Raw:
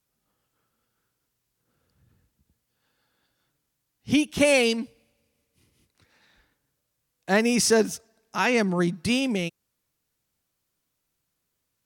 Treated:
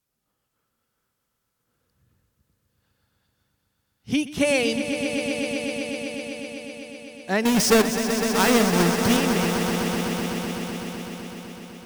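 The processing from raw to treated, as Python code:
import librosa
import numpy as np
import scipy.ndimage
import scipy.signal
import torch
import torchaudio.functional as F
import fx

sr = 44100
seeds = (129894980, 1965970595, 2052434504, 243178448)

y = fx.halfwave_hold(x, sr, at=(7.45, 9.17))
y = fx.echo_swell(y, sr, ms=126, loudest=5, wet_db=-10.5)
y = y * 10.0 ** (-2.0 / 20.0)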